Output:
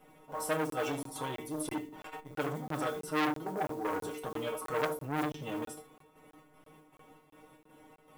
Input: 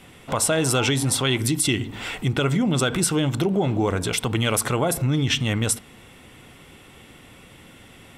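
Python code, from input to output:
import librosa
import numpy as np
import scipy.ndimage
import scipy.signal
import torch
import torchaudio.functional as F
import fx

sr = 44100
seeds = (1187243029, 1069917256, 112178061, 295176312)

y = fx.graphic_eq(x, sr, hz=(125, 250, 500, 1000, 2000, 4000, 8000), db=(-6, 5, 7, 7, -6, -9, -11))
y = fx.chopper(y, sr, hz=2.6, depth_pct=60, duty_pct=65)
y = fx.stiff_resonator(y, sr, f0_hz=150.0, decay_s=0.29, stiffness=0.002)
y = fx.mod_noise(y, sr, seeds[0], snr_db=29)
y = fx.high_shelf(y, sr, hz=4700.0, db=5.5)
y = fx.hum_notches(y, sr, base_hz=50, count=9)
y = fx.doubler(y, sr, ms=32.0, db=-11.5)
y = y + 10.0 ** (-13.0 / 20.0) * np.pad(y, (int(75 * sr / 1000.0), 0))[:len(y)]
y = fx.buffer_crackle(y, sr, first_s=0.7, period_s=0.33, block=1024, kind='zero')
y = fx.transformer_sat(y, sr, knee_hz=2000.0)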